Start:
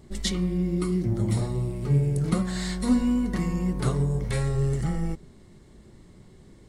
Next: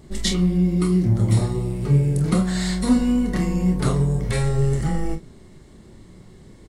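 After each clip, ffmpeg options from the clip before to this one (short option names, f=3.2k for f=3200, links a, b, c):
-af "aecho=1:1:27|45:0.422|0.282,volume=4.5dB"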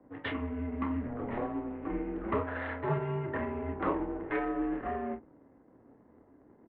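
-filter_complex "[0:a]adynamicsmooth=sensitivity=5:basefreq=660,highpass=f=160:t=q:w=0.5412,highpass=f=160:t=q:w=1.307,lowpass=f=3.2k:t=q:w=0.5176,lowpass=f=3.2k:t=q:w=0.7071,lowpass=f=3.2k:t=q:w=1.932,afreqshift=-100,acrossover=split=280 2200:gain=0.0891 1 0.0708[a][b][c];[a][b][c]amix=inputs=3:normalize=0"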